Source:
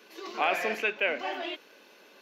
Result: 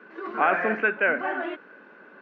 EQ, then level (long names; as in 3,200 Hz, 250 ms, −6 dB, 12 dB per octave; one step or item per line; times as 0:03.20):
low-pass with resonance 1,500 Hz, resonance Q 4.2
parametric band 170 Hz +11.5 dB 2.2 octaves
0.0 dB